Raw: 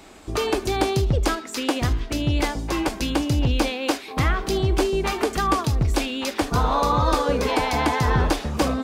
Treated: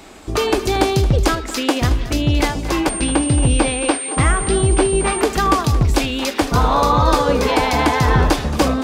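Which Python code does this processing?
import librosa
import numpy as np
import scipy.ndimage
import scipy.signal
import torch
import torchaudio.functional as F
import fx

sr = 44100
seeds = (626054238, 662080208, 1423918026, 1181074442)

y = x + 10.0 ** (-14.5 / 20.0) * np.pad(x, (int(225 * sr / 1000.0), 0))[:len(x)]
y = fx.pwm(y, sr, carrier_hz=8700.0, at=(2.89, 5.21))
y = F.gain(torch.from_numpy(y), 5.5).numpy()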